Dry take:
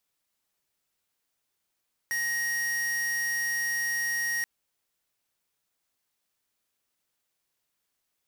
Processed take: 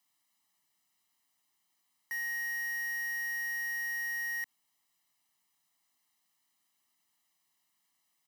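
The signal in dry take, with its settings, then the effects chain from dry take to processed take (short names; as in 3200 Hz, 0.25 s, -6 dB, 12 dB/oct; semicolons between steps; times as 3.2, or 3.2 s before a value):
tone square 1880 Hz -29 dBFS 2.33 s
HPF 180 Hz 12 dB/oct; limiter -37.5 dBFS; comb 1 ms, depth 83%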